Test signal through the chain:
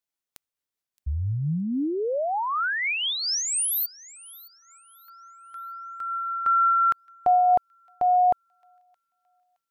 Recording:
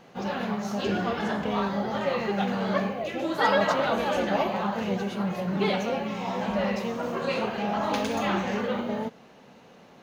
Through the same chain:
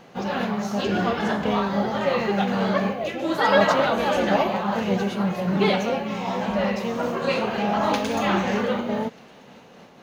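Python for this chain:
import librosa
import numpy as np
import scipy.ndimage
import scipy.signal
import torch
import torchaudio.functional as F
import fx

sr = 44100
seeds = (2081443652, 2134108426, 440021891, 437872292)

p1 = x + fx.echo_wet_highpass(x, sr, ms=619, feedback_pct=33, hz=2600.0, wet_db=-20, dry=0)
p2 = fx.am_noise(p1, sr, seeds[0], hz=5.7, depth_pct=50)
y = p2 * librosa.db_to_amplitude(6.5)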